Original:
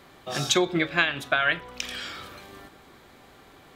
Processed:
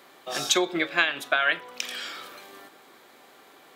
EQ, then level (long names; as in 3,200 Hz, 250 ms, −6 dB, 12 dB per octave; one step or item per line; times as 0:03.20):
high-pass filter 320 Hz 12 dB per octave
high-shelf EQ 9,900 Hz +6 dB
0.0 dB